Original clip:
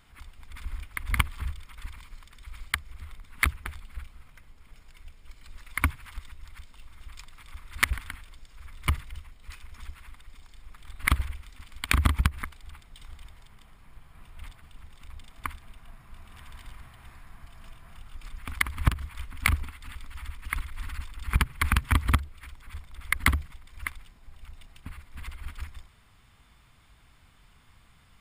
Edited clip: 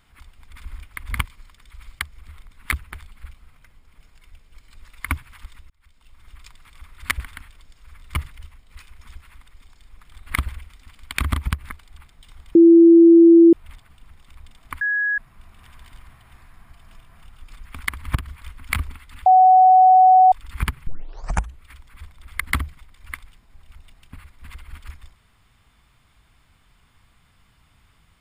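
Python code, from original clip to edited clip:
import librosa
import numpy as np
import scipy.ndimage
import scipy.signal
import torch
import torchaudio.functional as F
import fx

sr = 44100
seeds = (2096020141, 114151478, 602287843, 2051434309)

y = fx.edit(x, sr, fx.cut(start_s=1.25, length_s=0.73),
    fx.fade_in_span(start_s=6.43, length_s=0.57),
    fx.bleep(start_s=13.28, length_s=0.98, hz=335.0, db=-6.0),
    fx.bleep(start_s=15.54, length_s=0.37, hz=1670.0, db=-18.5),
    fx.bleep(start_s=19.99, length_s=1.06, hz=746.0, db=-8.0),
    fx.tape_start(start_s=21.6, length_s=0.73), tone=tone)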